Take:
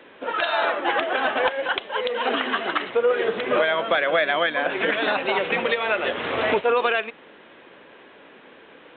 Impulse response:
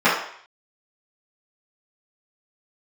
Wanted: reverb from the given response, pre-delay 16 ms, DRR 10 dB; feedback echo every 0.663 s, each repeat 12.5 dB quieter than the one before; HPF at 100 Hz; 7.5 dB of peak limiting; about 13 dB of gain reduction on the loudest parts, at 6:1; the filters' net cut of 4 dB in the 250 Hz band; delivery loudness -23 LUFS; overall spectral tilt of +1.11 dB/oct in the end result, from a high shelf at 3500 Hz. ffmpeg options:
-filter_complex "[0:a]highpass=100,equalizer=f=250:t=o:g=-5.5,highshelf=f=3.5k:g=8,acompressor=threshold=-31dB:ratio=6,alimiter=level_in=1dB:limit=-24dB:level=0:latency=1,volume=-1dB,aecho=1:1:663|1326|1989:0.237|0.0569|0.0137,asplit=2[a][b];[1:a]atrim=start_sample=2205,adelay=16[c];[b][c]afir=irnorm=-1:irlink=0,volume=-33.5dB[d];[a][d]amix=inputs=2:normalize=0,volume=11.5dB"

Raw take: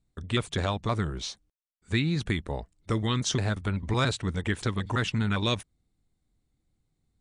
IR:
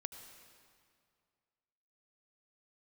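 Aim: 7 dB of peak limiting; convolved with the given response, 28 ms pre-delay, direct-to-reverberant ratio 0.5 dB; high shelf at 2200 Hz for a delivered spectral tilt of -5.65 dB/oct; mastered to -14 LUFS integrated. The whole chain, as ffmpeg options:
-filter_complex "[0:a]highshelf=f=2.2k:g=-5.5,alimiter=limit=-22.5dB:level=0:latency=1,asplit=2[a][b];[1:a]atrim=start_sample=2205,adelay=28[c];[b][c]afir=irnorm=-1:irlink=0,volume=2dB[d];[a][d]amix=inputs=2:normalize=0,volume=16dB"

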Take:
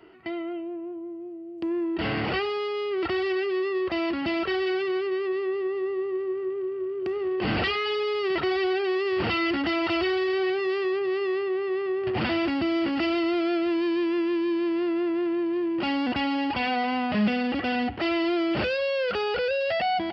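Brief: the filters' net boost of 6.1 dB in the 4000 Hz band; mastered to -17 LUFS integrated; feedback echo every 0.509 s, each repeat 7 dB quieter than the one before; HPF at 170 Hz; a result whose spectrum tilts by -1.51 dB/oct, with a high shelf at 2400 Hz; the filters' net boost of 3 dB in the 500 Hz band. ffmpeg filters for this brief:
-af "highpass=170,equalizer=f=500:t=o:g=4.5,highshelf=f=2.4k:g=4,equalizer=f=4k:t=o:g=5,aecho=1:1:509|1018|1527|2036|2545:0.447|0.201|0.0905|0.0407|0.0183,volume=5.5dB"

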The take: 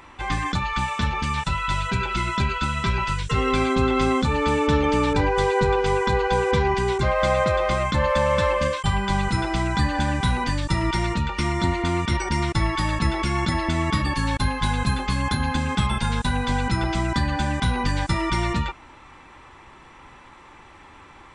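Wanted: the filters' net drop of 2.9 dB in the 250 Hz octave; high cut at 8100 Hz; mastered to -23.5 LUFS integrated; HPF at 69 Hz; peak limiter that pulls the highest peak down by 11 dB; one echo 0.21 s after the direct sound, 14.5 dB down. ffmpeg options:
-af "highpass=69,lowpass=8.1k,equalizer=f=250:t=o:g=-4,alimiter=limit=-21dB:level=0:latency=1,aecho=1:1:210:0.188,volume=6dB"

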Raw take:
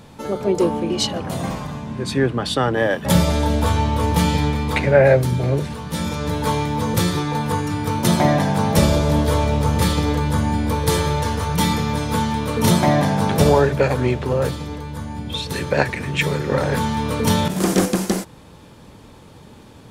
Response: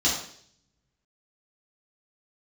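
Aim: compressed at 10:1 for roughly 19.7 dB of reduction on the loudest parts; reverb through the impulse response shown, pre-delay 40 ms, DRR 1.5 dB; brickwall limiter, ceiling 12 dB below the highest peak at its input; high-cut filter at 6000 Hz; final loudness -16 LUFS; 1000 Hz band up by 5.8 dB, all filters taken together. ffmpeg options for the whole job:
-filter_complex "[0:a]lowpass=6k,equalizer=f=1k:t=o:g=7,acompressor=threshold=-28dB:ratio=10,alimiter=level_in=3.5dB:limit=-24dB:level=0:latency=1,volume=-3.5dB,asplit=2[a][b];[1:a]atrim=start_sample=2205,adelay=40[c];[b][c]afir=irnorm=-1:irlink=0,volume=-14dB[d];[a][d]amix=inputs=2:normalize=0,volume=17dB"

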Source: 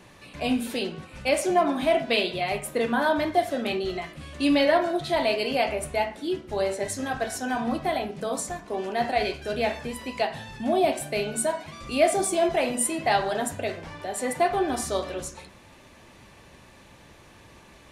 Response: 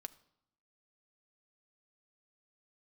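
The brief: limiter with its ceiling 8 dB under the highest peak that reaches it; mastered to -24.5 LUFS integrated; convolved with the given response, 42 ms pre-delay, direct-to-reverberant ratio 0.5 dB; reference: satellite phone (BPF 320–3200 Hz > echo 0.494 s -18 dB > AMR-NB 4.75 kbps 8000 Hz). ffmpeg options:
-filter_complex "[0:a]alimiter=limit=-16dB:level=0:latency=1,asplit=2[a][b];[1:a]atrim=start_sample=2205,adelay=42[c];[b][c]afir=irnorm=-1:irlink=0,volume=4dB[d];[a][d]amix=inputs=2:normalize=0,highpass=320,lowpass=3.2k,aecho=1:1:494:0.126,volume=4.5dB" -ar 8000 -c:a libopencore_amrnb -b:a 4750

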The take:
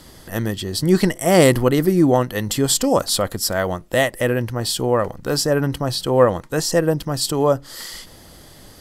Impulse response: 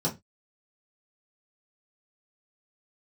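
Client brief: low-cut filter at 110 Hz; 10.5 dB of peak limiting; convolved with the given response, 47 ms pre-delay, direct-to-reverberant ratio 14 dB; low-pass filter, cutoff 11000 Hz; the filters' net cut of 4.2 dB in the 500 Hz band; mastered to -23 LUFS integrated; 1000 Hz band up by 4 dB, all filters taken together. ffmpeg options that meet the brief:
-filter_complex "[0:a]highpass=110,lowpass=11k,equalizer=f=500:t=o:g=-7,equalizer=f=1k:t=o:g=7.5,alimiter=limit=-12dB:level=0:latency=1,asplit=2[a][b];[1:a]atrim=start_sample=2205,adelay=47[c];[b][c]afir=irnorm=-1:irlink=0,volume=-22dB[d];[a][d]amix=inputs=2:normalize=0,volume=-0.5dB"

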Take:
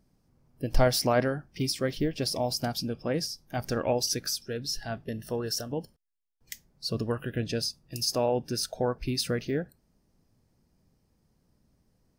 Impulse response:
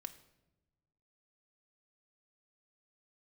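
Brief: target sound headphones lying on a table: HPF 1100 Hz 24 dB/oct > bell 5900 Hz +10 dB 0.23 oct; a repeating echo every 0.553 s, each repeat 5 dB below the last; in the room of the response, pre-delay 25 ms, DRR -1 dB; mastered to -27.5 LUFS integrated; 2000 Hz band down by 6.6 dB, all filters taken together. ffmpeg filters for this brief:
-filter_complex "[0:a]equalizer=f=2k:t=o:g=-9,aecho=1:1:553|1106|1659|2212|2765|3318|3871:0.562|0.315|0.176|0.0988|0.0553|0.031|0.0173,asplit=2[a][b];[1:a]atrim=start_sample=2205,adelay=25[c];[b][c]afir=irnorm=-1:irlink=0,volume=5.5dB[d];[a][d]amix=inputs=2:normalize=0,highpass=f=1.1k:w=0.5412,highpass=f=1.1k:w=1.3066,equalizer=f=5.9k:t=o:w=0.23:g=10,volume=-0.5dB"

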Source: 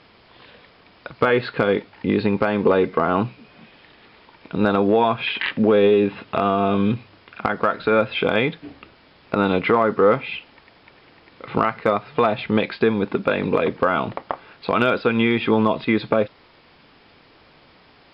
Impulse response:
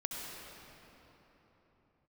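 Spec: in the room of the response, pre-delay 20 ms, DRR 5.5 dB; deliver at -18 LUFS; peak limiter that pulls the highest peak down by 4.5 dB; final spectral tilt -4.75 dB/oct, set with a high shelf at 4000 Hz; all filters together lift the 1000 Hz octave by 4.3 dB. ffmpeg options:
-filter_complex "[0:a]equalizer=f=1k:t=o:g=6,highshelf=f=4k:g=-4.5,alimiter=limit=-6.5dB:level=0:latency=1,asplit=2[a][b];[1:a]atrim=start_sample=2205,adelay=20[c];[b][c]afir=irnorm=-1:irlink=0,volume=-7.5dB[d];[a][d]amix=inputs=2:normalize=0,volume=1.5dB"

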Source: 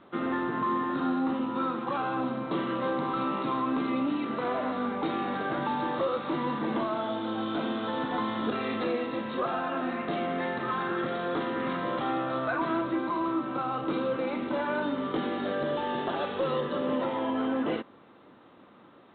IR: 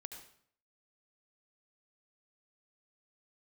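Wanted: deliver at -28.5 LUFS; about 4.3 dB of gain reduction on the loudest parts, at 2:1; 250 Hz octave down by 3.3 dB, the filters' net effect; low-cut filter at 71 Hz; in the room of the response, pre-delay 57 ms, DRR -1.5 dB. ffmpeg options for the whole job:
-filter_complex "[0:a]highpass=71,equalizer=f=250:t=o:g=-4,acompressor=threshold=-34dB:ratio=2,asplit=2[a][b];[1:a]atrim=start_sample=2205,adelay=57[c];[b][c]afir=irnorm=-1:irlink=0,volume=6dB[d];[a][d]amix=inputs=2:normalize=0,volume=2.5dB"

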